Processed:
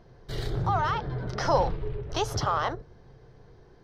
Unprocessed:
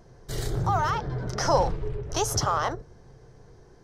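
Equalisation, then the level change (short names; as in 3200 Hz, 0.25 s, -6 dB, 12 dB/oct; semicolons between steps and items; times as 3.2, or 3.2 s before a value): resonant high shelf 5300 Hz -10 dB, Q 1.5; -1.5 dB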